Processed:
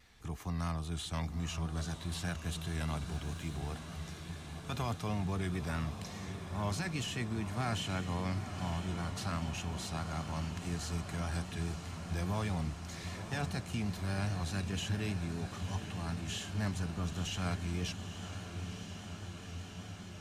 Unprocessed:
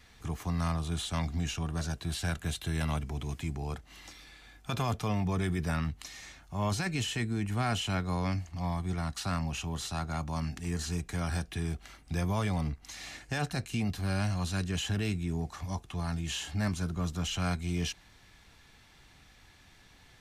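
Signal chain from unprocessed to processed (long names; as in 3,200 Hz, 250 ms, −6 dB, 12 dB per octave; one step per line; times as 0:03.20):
feedback delay with all-pass diffusion 942 ms, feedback 77%, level −9 dB
pitch vibrato 4.9 Hz 44 cents
0:03.13–0:03.75: surface crackle 140 per second −44 dBFS
level −5 dB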